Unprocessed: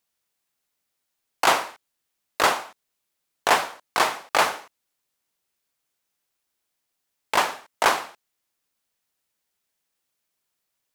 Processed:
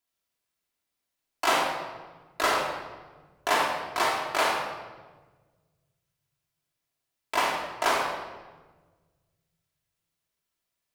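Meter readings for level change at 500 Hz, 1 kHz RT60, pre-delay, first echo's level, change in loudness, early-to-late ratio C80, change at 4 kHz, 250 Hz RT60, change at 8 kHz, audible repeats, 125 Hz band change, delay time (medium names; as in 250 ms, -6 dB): -2.0 dB, 1.2 s, 3 ms, no echo, -4.0 dB, 4.0 dB, -3.5 dB, 2.0 s, -5.5 dB, no echo, -1.0 dB, no echo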